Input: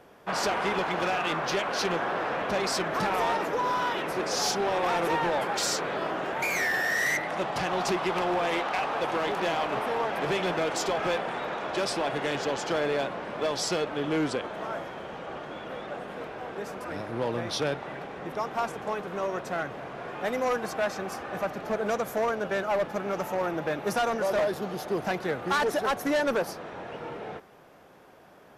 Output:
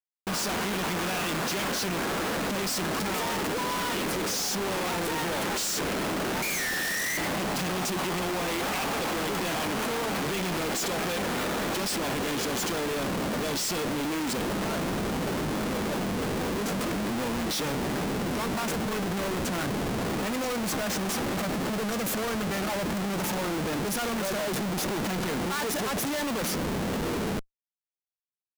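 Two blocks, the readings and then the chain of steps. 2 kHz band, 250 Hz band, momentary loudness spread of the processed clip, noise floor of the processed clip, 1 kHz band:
-1.0 dB, +5.0 dB, 2 LU, -36 dBFS, -3.0 dB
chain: EQ curve 120 Hz 0 dB, 200 Hz +13 dB, 690 Hz -3 dB, 4600 Hz +8 dB, 7300 Hz +14 dB; Schmitt trigger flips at -37 dBFS; gain -3.5 dB

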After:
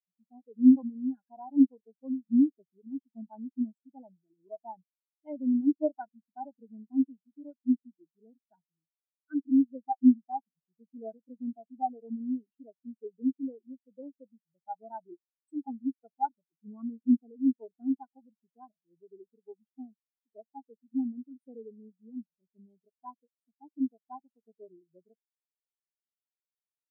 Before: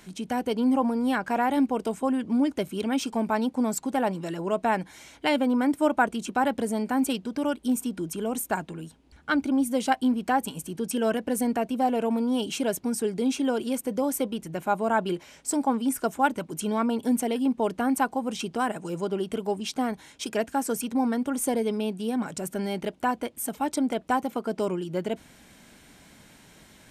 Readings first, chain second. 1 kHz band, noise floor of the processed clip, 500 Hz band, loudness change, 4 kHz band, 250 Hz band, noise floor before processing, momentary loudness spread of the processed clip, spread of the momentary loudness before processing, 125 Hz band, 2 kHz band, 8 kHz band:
-12.5 dB, under -85 dBFS, -17.0 dB, -2.5 dB, under -40 dB, -3.0 dB, -54 dBFS, 23 LU, 7 LU, under -15 dB, under -30 dB, under -40 dB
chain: spectral expander 4:1

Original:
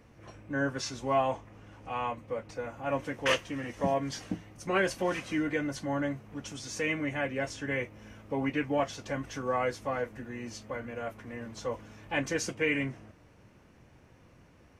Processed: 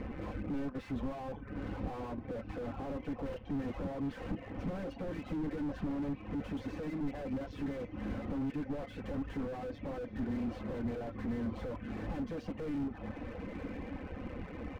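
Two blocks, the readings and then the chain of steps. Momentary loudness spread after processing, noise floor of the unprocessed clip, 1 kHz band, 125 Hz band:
6 LU, -59 dBFS, -11.5 dB, -1.5 dB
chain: dynamic EQ 1700 Hz, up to -4 dB, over -43 dBFS, Q 1.6; compressor 2.5:1, threshold -50 dBFS, peak gain reduction 17.5 dB; sine folder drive 7 dB, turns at -31 dBFS; LPF 2800 Hz 24 dB/oct; low shelf 320 Hz +5 dB; comb 3.9 ms, depth 84%; AM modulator 140 Hz, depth 45%; on a send: diffused feedback echo 0.99 s, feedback 64%, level -15.5 dB; on the sum: reverb removal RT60 0.61 s; slew limiter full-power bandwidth 3.8 Hz; gain +4 dB

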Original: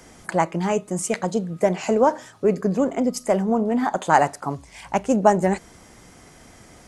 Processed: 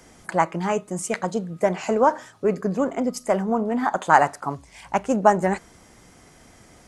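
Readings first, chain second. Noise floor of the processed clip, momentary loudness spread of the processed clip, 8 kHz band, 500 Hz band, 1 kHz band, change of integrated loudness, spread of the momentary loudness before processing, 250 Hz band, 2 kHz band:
-52 dBFS, 10 LU, -3.0 dB, -1.5 dB, +1.0 dB, -1.0 dB, 8 LU, -3.0 dB, +2.0 dB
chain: dynamic EQ 1300 Hz, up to +7 dB, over -34 dBFS, Q 1; gain -3 dB

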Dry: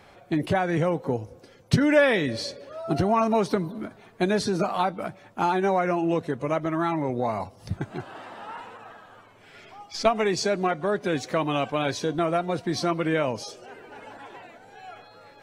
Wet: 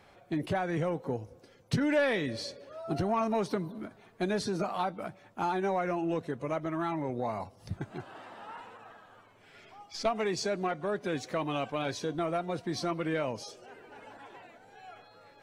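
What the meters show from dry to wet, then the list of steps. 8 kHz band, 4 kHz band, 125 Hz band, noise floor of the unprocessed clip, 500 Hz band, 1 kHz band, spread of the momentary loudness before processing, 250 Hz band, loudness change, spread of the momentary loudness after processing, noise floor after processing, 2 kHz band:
-6.5 dB, -7.0 dB, -7.5 dB, -53 dBFS, -7.5 dB, -7.0 dB, 19 LU, -7.0 dB, -7.5 dB, 20 LU, -59 dBFS, -7.5 dB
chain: soft clip -12 dBFS, distortion -21 dB; gain -6.5 dB

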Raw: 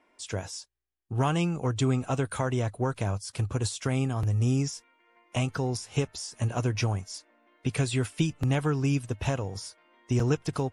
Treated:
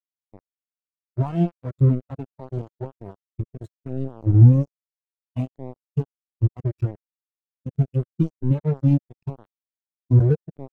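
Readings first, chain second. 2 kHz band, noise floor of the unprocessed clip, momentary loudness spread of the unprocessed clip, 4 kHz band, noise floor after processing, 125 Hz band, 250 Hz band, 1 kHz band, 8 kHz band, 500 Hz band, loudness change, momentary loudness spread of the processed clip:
under -15 dB, -67 dBFS, 9 LU, under -20 dB, under -85 dBFS, +7.5 dB, +4.0 dB, n/a, under -30 dB, -0.5 dB, +7.5 dB, 19 LU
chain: bit-crush 4-bit; spectral expander 2.5:1; gain +8 dB

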